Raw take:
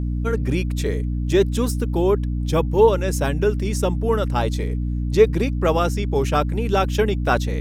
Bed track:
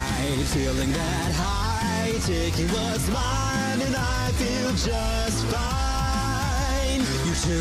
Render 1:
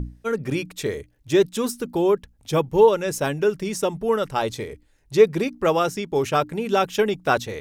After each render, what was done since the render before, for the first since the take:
mains-hum notches 60/120/180/240/300 Hz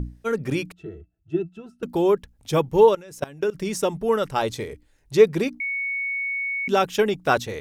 0:00.72–0:01.83: resonances in every octave E, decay 0.1 s
0:02.93–0:03.55: output level in coarse steps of 21 dB
0:05.60–0:06.68: beep over 2,220 Hz −24 dBFS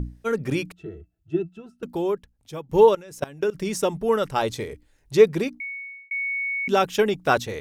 0:01.37–0:02.69: fade out linear, to −18 dB
0:05.28–0:06.11: fade out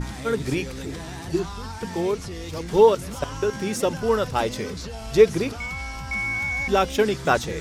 mix in bed track −10 dB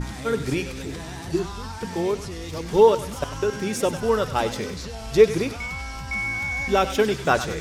feedback echo with a high-pass in the loop 97 ms, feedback 54%, high-pass 950 Hz, level −10 dB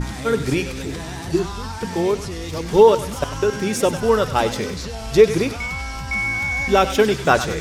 level +4.5 dB
brickwall limiter −2 dBFS, peak gain reduction 3 dB

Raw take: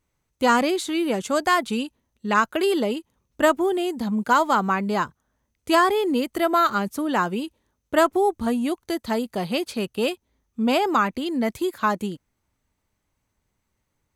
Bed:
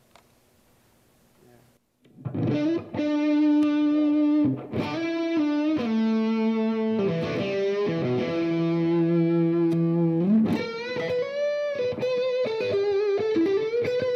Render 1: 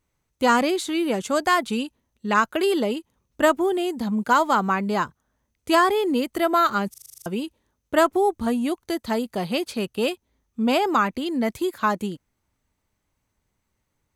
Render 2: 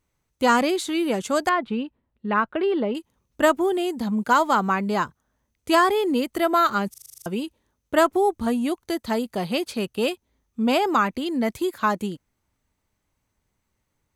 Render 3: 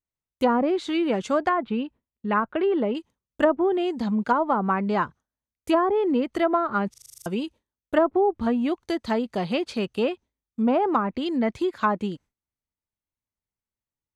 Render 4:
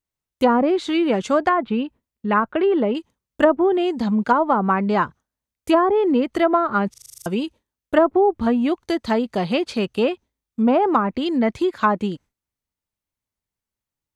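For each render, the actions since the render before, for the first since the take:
0:06.90: stutter in place 0.04 s, 9 plays
0:01.49–0:02.95: high-frequency loss of the air 430 metres
treble cut that deepens with the level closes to 810 Hz, closed at −15 dBFS; noise gate with hold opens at −46 dBFS
level +4.5 dB

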